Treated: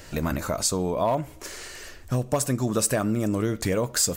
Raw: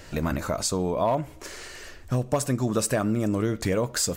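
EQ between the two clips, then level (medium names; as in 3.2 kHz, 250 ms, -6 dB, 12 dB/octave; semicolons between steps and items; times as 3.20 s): treble shelf 7 kHz +6.5 dB; 0.0 dB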